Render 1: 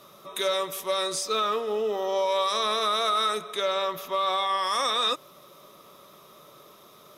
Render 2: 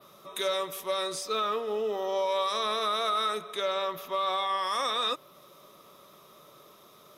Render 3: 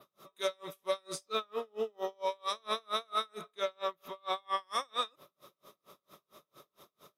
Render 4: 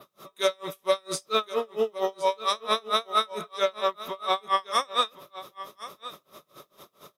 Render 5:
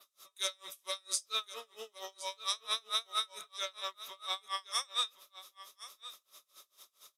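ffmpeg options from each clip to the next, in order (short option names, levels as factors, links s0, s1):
-af "adynamicequalizer=threshold=0.00447:dfrequency=7100:dqfactor=0.91:tfrequency=7100:tqfactor=0.91:attack=5:release=100:ratio=0.375:range=2.5:mode=cutabove:tftype=bell,volume=0.708"
-af "aeval=exprs='val(0)*pow(10,-38*(0.5-0.5*cos(2*PI*4.4*n/s))/20)':c=same"
-af "aecho=1:1:1070:0.168,volume=2.82"
-af "bandpass=f=7700:t=q:w=0.88:csg=0,volume=1.19"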